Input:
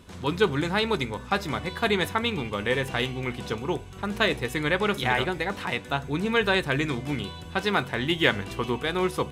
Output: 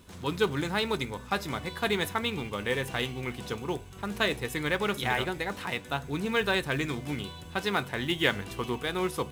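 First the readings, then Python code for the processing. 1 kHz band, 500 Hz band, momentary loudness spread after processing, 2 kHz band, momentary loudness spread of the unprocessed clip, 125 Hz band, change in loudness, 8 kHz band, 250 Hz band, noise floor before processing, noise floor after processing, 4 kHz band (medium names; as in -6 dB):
-4.0 dB, -4.5 dB, 8 LU, -4.0 dB, 8 LU, -4.5 dB, -4.0 dB, 0.0 dB, -4.5 dB, -41 dBFS, -45 dBFS, -3.5 dB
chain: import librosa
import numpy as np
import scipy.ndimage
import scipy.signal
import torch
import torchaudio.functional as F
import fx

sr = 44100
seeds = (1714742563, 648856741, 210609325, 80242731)

p1 = fx.high_shelf(x, sr, hz=8200.0, db=8.0)
p2 = fx.quant_companded(p1, sr, bits=4)
p3 = p1 + (p2 * librosa.db_to_amplitude(-11.0))
y = p3 * librosa.db_to_amplitude(-6.5)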